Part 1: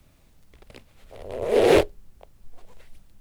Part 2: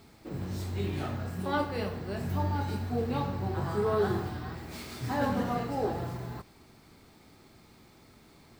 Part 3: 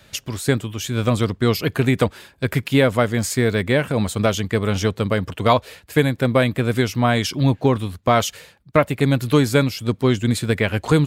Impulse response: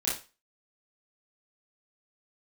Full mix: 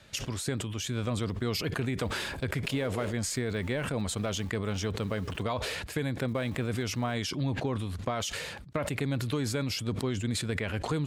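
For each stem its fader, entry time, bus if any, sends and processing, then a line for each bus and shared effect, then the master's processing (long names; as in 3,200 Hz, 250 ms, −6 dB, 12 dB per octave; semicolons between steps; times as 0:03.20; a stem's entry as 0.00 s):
−16.0 dB, 1.30 s, no send, upward compression, threshold −29 dBFS
−19.0 dB, 1.25 s, no send, reverb reduction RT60 1.5 s; bit reduction 5 bits
−5.5 dB, 0.00 s, no send, low-pass filter 10,000 Hz 12 dB per octave; brickwall limiter −8 dBFS, peak gain reduction 7 dB; level that may fall only so fast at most 49 dB per second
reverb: not used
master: downward compressor 2.5 to 1, threshold −31 dBFS, peak gain reduction 9 dB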